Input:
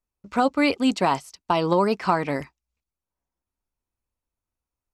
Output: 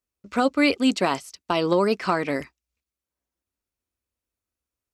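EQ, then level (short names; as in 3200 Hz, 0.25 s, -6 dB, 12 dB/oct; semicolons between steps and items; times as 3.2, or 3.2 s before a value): HPF 62 Hz; bell 140 Hz -7 dB 1 oct; bell 880 Hz -8 dB 0.69 oct; +2.5 dB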